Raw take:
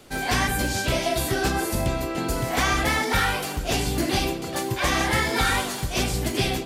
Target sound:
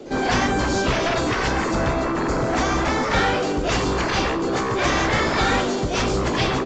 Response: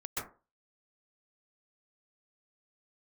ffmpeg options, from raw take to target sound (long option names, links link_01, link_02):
-filter_complex "[0:a]asettb=1/sr,asplit=3[link_01][link_02][link_03];[link_01]atrim=end=2.124[link_04];[link_02]atrim=start=2.12:end=3.11,asetpts=PTS-STARTPTS,afade=type=in:duration=0.004:curve=qsin,afade=type=out:start_time=0.986:duration=0.004:curve=qsin,equalizer=frequency=2300:width_type=o:width=1.9:gain=-5[link_05];[link_03]atrim=start=3.106[link_06];[link_04][link_05]acrossfade=duration=0.004:curve1=hsin:curve2=qsin[link_07];[link_07][link_06]acrossfade=duration=0.004:curve1=qsin:curve2=hsin,acrossover=split=280|510|2000[link_08][link_09][link_10][link_11];[link_09]aeval=exprs='0.0891*sin(PI/2*7.08*val(0)/0.0891)':channel_layout=same[link_12];[link_08][link_12][link_10][link_11]amix=inputs=4:normalize=0,asplit=2[link_13][link_14];[link_14]adelay=93.29,volume=-28dB,highshelf=frequency=4000:gain=-2.1[link_15];[link_13][link_15]amix=inputs=2:normalize=0" -ar 16000 -c:a aac -b:a 32k